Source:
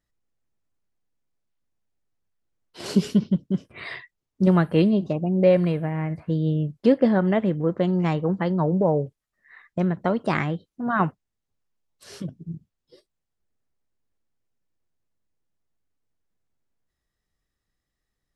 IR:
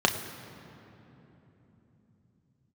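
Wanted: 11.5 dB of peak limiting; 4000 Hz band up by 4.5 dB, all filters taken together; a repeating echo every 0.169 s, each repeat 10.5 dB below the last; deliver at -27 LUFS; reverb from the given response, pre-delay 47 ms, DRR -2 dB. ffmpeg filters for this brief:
-filter_complex "[0:a]equalizer=f=4k:t=o:g=6,alimiter=limit=-18dB:level=0:latency=1,aecho=1:1:169|338|507:0.299|0.0896|0.0269,asplit=2[a][b];[1:a]atrim=start_sample=2205,adelay=47[c];[b][c]afir=irnorm=-1:irlink=0,volume=-12.5dB[d];[a][d]amix=inputs=2:normalize=0,volume=-5dB"

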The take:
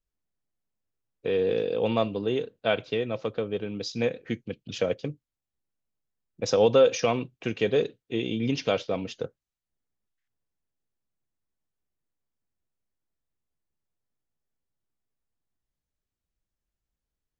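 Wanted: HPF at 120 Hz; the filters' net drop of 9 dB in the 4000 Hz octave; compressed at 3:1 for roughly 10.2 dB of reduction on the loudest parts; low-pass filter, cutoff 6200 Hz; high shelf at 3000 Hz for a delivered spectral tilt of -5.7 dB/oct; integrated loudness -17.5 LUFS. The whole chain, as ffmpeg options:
-af "highpass=120,lowpass=6.2k,highshelf=f=3k:g=-4,equalizer=f=4k:t=o:g=-8.5,acompressor=threshold=-29dB:ratio=3,volume=16.5dB"

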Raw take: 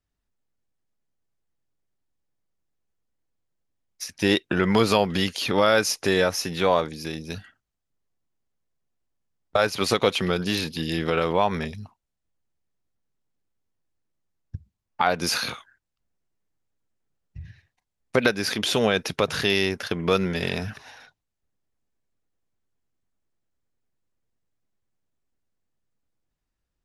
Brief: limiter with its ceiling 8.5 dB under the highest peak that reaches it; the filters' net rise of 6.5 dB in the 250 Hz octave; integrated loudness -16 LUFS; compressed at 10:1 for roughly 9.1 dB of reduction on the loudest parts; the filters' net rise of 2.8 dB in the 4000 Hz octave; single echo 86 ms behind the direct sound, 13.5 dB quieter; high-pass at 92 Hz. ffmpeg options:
-af "highpass=92,equalizer=f=250:t=o:g=9,equalizer=f=4k:t=o:g=3.5,acompressor=threshold=-19dB:ratio=10,alimiter=limit=-13.5dB:level=0:latency=1,aecho=1:1:86:0.211,volume=10dB"

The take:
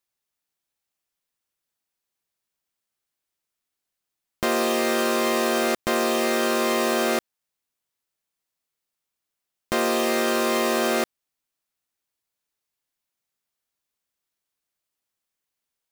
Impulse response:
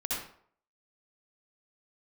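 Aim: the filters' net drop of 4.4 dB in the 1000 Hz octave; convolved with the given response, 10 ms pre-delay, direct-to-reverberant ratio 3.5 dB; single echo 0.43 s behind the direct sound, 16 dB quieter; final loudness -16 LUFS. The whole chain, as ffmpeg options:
-filter_complex "[0:a]equalizer=f=1k:t=o:g=-6,aecho=1:1:430:0.158,asplit=2[a][b];[1:a]atrim=start_sample=2205,adelay=10[c];[b][c]afir=irnorm=-1:irlink=0,volume=-9dB[d];[a][d]amix=inputs=2:normalize=0,volume=7dB"

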